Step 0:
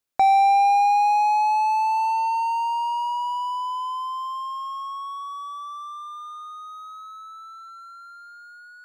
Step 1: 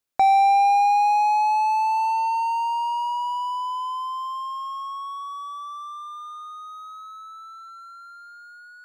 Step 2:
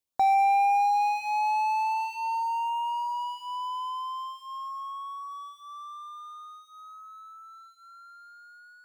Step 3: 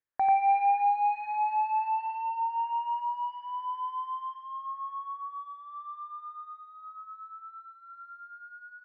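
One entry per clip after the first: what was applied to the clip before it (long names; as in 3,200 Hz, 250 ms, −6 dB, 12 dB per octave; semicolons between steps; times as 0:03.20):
no processing that can be heard
log-companded quantiser 8 bits; auto-filter notch sine 0.45 Hz 330–4,700 Hz; dynamic equaliser 2,300 Hz, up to +5 dB, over −40 dBFS, Q 0.82; level −6 dB
transistor ladder low-pass 1,900 Hz, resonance 70%; single-tap delay 91 ms −5 dB; level +6.5 dB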